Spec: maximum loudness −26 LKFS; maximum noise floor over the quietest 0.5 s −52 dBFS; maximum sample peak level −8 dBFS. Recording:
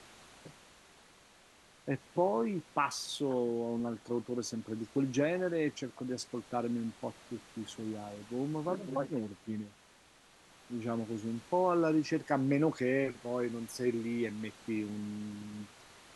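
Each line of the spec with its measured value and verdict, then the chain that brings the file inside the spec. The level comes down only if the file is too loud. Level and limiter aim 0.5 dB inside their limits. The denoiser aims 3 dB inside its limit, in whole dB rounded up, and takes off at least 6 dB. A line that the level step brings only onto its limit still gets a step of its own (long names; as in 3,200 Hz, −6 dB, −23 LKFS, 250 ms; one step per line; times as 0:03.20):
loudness −35.0 LKFS: in spec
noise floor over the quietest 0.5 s −62 dBFS: in spec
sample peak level −17.5 dBFS: in spec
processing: no processing needed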